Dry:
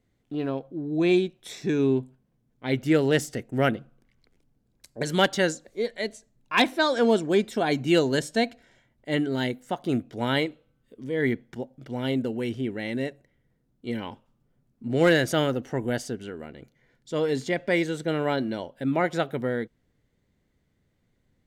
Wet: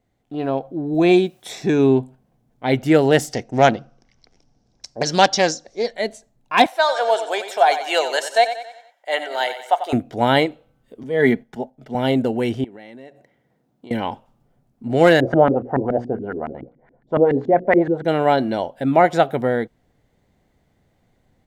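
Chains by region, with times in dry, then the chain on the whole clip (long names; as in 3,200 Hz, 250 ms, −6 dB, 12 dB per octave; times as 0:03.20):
0:00.94–0:01.50: high-pass filter 55 Hz + bit-depth reduction 12 bits, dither triangular
0:03.33–0:05.93: low-pass with resonance 5,600 Hz, resonance Q 6.6 + highs frequency-modulated by the lows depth 0.19 ms
0:06.66–0:09.93: high-pass filter 590 Hz 24 dB per octave + repeating echo 92 ms, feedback 46%, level −11 dB
0:11.03–0:11.95: noise gate −50 dBFS, range −6 dB + comb filter 4.7 ms, depth 46% + multiband upward and downward expander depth 40%
0:12.64–0:13.91: high-pass filter 160 Hz + parametric band 11,000 Hz −4 dB 1.5 octaves + downward compressor 12 to 1, threshold −44 dBFS
0:15.20–0:18.05: mains-hum notches 60/120/180/240/300/360/420/480/540 Hz + auto-filter low-pass saw up 7.1 Hz 220–1,900 Hz
whole clip: parametric band 750 Hz +10 dB 0.7 octaves; automatic gain control gain up to 7 dB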